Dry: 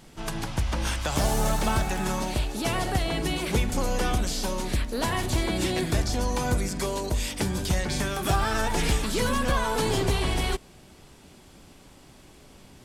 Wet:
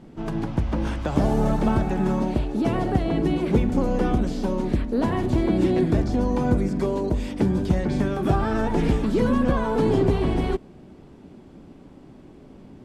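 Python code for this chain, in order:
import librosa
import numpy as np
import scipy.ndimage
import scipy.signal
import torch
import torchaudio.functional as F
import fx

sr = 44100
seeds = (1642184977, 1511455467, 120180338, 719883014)

y = fx.lowpass(x, sr, hz=1200.0, slope=6)
y = fx.peak_eq(y, sr, hz=260.0, db=10.0, octaves=2.0)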